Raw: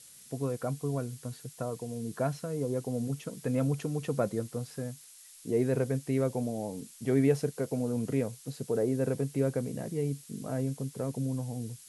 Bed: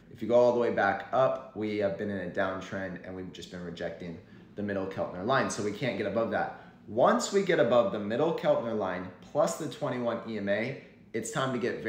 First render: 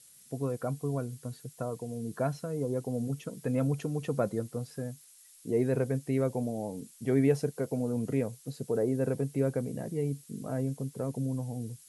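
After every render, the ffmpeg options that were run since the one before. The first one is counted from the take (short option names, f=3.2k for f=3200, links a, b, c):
-af "afftdn=nr=6:nf=-53"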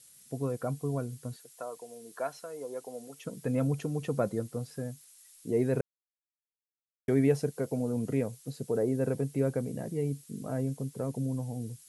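-filter_complex "[0:a]asettb=1/sr,asplit=3[a][b][c];[a]atrim=end=1.364[d];[b]atrim=start=1.36:end=3.25,asetpts=PTS-STARTPTS,afade=t=in:d=0.004:c=qsin,afade=t=out:st=1.886:d=0.004:c=qsin,highpass=570[e];[c]atrim=start=3.246[f];[d][e]acrossfade=d=0.004:c1=hsin:c2=qsin[g];[g][f]acrossfade=d=0.004:c1=qsin:c2=hsin,asplit=3[h][i][j];[h]atrim=end=5.81,asetpts=PTS-STARTPTS,afade=t=out:st=5.806:d=0.004:c=hsin[k];[i]atrim=start=5.81:end=7.08,asetpts=PTS-STARTPTS,volume=0[l];[j]atrim=start=7.08,asetpts=PTS-STARTPTS,afade=t=in:d=0.004:c=hsin[m];[k][l][m]concat=n=3:v=0:a=1"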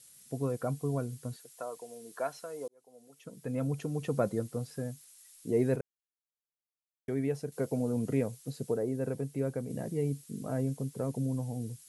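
-filter_complex "[0:a]asplit=6[a][b][c][d][e][f];[a]atrim=end=2.68,asetpts=PTS-STARTPTS,afade=t=out:st=2.676:d=0.004:c=hsin[g];[b]atrim=start=2.68:end=5.762,asetpts=PTS-STARTPTS,afade=t=in:d=1.48[h];[c]atrim=start=5.758:end=7.522,asetpts=PTS-STARTPTS,volume=-7dB[i];[d]atrim=start=7.518:end=8.742[j];[e]atrim=start=8.738:end=9.702,asetpts=PTS-STARTPTS,volume=-4dB[k];[f]atrim=start=9.698[l];[g][h]concat=n=2:v=0:a=1[m];[m][i]acrossfade=d=0.004:c1=hsin:c2=hsin[n];[n][j]acrossfade=d=0.004:c1=hsin:c2=hsin[o];[o][k]acrossfade=d=0.004:c1=hsin:c2=hsin[p];[p][l]acrossfade=d=0.004:c1=hsin:c2=hsin"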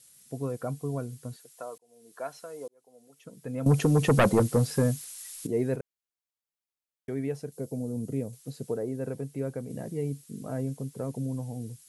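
-filter_complex "[0:a]asettb=1/sr,asplit=3[a][b][c];[a]atrim=end=3.664[d];[b]atrim=start=3.66:end=5.47,asetpts=PTS-STARTPTS,afade=t=in:d=0.004:c=qsin,afade=t=out:st=1.806:d=0.004:c=qsin,aeval=exprs='0.168*sin(PI/2*3.16*val(0)/0.168)':c=same[e];[c]atrim=start=5.466[f];[d][e]acrossfade=d=0.004:c1=hsin:c2=qsin[g];[g][f]acrossfade=d=0.004:c1=qsin:c2=hsin,asettb=1/sr,asplit=3[h][i][j];[h]atrim=end=7.524[k];[i]atrim=start=7.52:end=8.33,asetpts=PTS-STARTPTS,afade=t=in:d=0.004:c=qsin,afade=t=out:st=0.806:d=0.004:c=qsin,equalizer=f=1.5k:w=0.59:g=-14[l];[j]atrim=start=8.326[m];[k][l]acrossfade=d=0.004:c1=hsin:c2=qsin[n];[n][m]acrossfade=d=0.004:c1=qsin:c2=hsin,asplit=2[o][p];[o]atrim=end=1.78,asetpts=PTS-STARTPTS,afade=t=out:st=1.776:d=0.004:c=hsin[q];[p]atrim=start=1.78,asetpts=PTS-STARTPTS,afade=t=in:d=0.59[r];[q][r]concat=n=2:v=0:a=1"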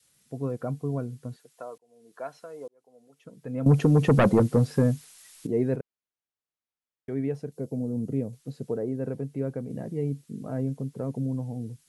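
-af "lowpass=f=2.8k:p=1,adynamicequalizer=threshold=0.0158:dfrequency=210:dqfactor=0.71:tfrequency=210:tqfactor=0.71:attack=5:release=100:ratio=0.375:range=2:mode=boostabove:tftype=bell"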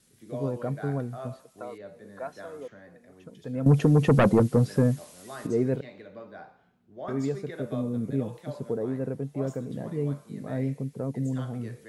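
-filter_complex "[1:a]volume=-15dB[a];[0:a][a]amix=inputs=2:normalize=0"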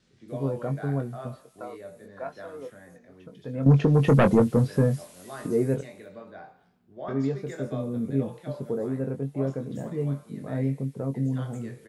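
-filter_complex "[0:a]asplit=2[a][b];[b]adelay=22,volume=-7dB[c];[a][c]amix=inputs=2:normalize=0,acrossover=split=5900[d][e];[e]adelay=280[f];[d][f]amix=inputs=2:normalize=0"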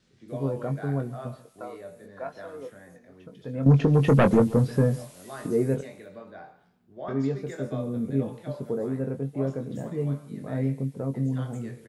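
-af "aecho=1:1:138:0.106"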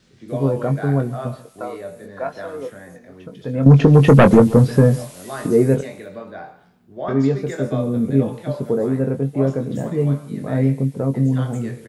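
-af "volume=9.5dB,alimiter=limit=-2dB:level=0:latency=1"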